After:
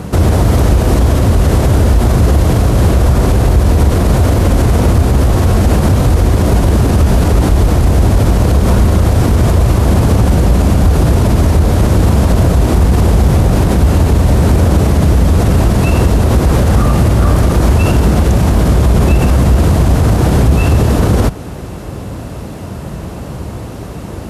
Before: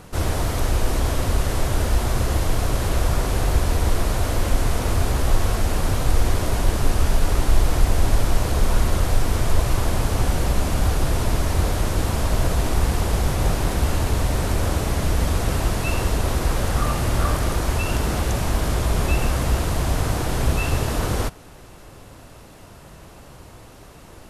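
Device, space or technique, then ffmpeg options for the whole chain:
mastering chain: -af "highpass=f=50:w=0.5412,highpass=f=50:w=1.3066,equalizer=f=200:t=o:w=0.31:g=3.5,acompressor=threshold=-26dB:ratio=1.5,tiltshelf=f=660:g=5.5,asoftclip=type=hard:threshold=-11.5dB,alimiter=level_in=17.5dB:limit=-1dB:release=50:level=0:latency=1,volume=-1dB"

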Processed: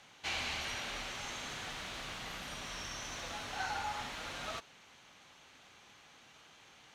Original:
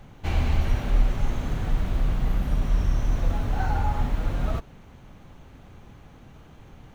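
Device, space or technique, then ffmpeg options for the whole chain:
piezo pickup straight into a mixer: -af "lowpass=5.3k,aderivative,volume=11dB"

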